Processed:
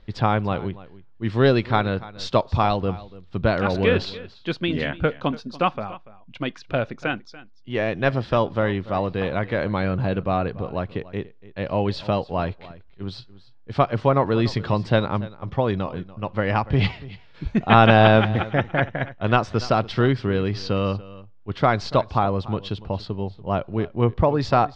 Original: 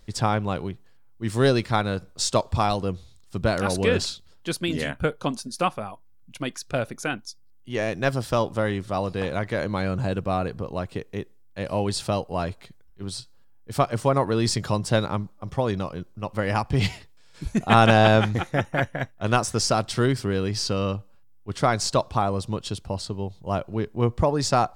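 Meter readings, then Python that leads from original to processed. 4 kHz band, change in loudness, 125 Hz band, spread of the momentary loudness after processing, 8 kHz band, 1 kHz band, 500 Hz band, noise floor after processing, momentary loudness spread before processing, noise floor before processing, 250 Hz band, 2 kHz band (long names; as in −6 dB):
−1.0 dB, +2.5 dB, +2.5 dB, 13 LU, below −15 dB, +2.5 dB, +2.5 dB, −47 dBFS, 13 LU, −51 dBFS, +2.5 dB, +2.5 dB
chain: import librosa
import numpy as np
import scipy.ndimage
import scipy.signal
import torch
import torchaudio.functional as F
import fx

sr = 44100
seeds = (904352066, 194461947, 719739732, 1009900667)

y = scipy.signal.sosfilt(scipy.signal.butter(4, 3800.0, 'lowpass', fs=sr, output='sos'), x)
y = y + 10.0 ** (-18.5 / 20.0) * np.pad(y, (int(288 * sr / 1000.0), 0))[:len(y)]
y = y * librosa.db_to_amplitude(2.5)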